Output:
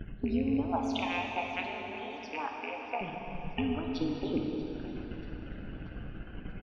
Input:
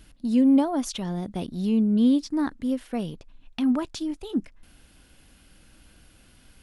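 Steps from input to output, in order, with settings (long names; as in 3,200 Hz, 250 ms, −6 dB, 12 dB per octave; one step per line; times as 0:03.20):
loose part that buzzes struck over −31 dBFS, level −21 dBFS
low-pass that shuts in the quiet parts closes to 2,300 Hz, open at −18 dBFS
noise gate −55 dBFS, range −44 dB
upward compression, threshold −28 dBFS
transient designer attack +6 dB, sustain −8 dB
downward compressor, threshold −26 dBFS, peak gain reduction 12 dB
amplitude modulation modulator 170 Hz, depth 65%
spectral peaks only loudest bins 64
0:00.72–0:03.01: high-pass with resonance 810 Hz, resonance Q 3.6
repeating echo 635 ms, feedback 44%, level −17 dB
dense smooth reverb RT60 3.8 s, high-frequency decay 0.8×, DRR 0.5 dB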